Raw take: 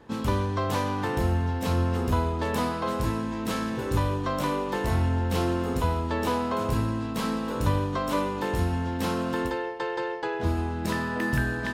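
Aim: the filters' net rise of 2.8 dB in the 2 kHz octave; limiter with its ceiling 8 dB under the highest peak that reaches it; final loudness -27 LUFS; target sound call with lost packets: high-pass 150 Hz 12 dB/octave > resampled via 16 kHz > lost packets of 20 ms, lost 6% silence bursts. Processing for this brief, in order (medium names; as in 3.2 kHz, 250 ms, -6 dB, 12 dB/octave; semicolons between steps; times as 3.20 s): peaking EQ 2 kHz +3.5 dB; peak limiter -19.5 dBFS; high-pass 150 Hz 12 dB/octave; resampled via 16 kHz; lost packets of 20 ms, lost 6% silence bursts; trim +3.5 dB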